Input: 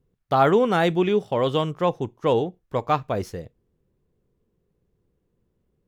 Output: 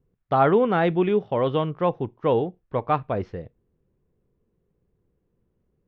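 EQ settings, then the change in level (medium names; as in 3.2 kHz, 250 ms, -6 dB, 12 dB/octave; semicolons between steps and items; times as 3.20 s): low-pass 3.2 kHz 12 dB/octave; distance through air 170 m; 0.0 dB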